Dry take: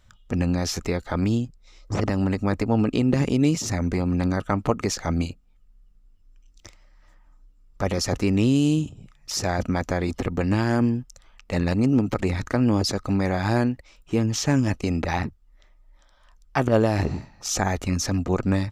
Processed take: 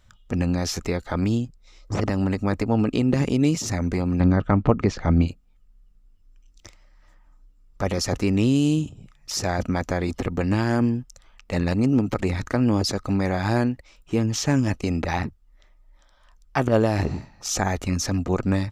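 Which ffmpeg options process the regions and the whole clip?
-filter_complex "[0:a]asettb=1/sr,asplit=3[a][b][c];[a]atrim=end=4.204[d];[b]atrim=start=4.2:end=5.28,asetpts=PTS-STARTPTS,afade=t=in:d=0.004:c=qsin,afade=t=out:st=1.076:d=0.004:c=qsin,lowpass=3.4k,lowshelf=f=350:g=7.5[e];[c]atrim=start=5.276[f];[d][e]acrossfade=d=0.004:c1=hsin:c2=qsin[g];[g][f]acrossfade=d=0.004:c1=qsin:c2=hsin"

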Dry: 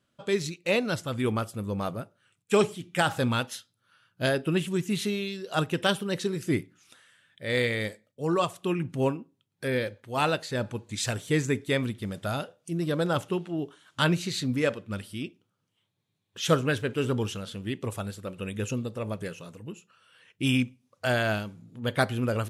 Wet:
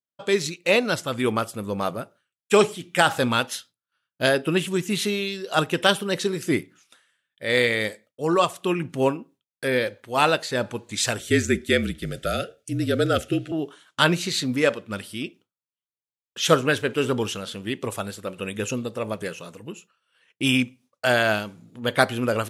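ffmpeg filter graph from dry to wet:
-filter_complex "[0:a]asettb=1/sr,asplit=3[a][b][c];[a]atrim=end=11.194[d];[b]atrim=start=11.19:end=13.52,asetpts=PTS-STARTPTS,afade=t=in:d=0.004:c=qsin,afade=t=out:st=2.326:d=0.004:c=qsin,asuperstop=centerf=1000:order=8:qfactor=1.9,lowshelf=f=220:g=5,afreqshift=-43[e];[c]atrim=start=13.516[f];[d][e]acrossfade=d=0.004:c1=hsin:c2=qsin[g];[g][f]acrossfade=d=0.004:c1=qsin:c2=hsin,agate=range=-33dB:threshold=-49dB:ratio=3:detection=peak,highpass=f=300:p=1,volume=7dB"

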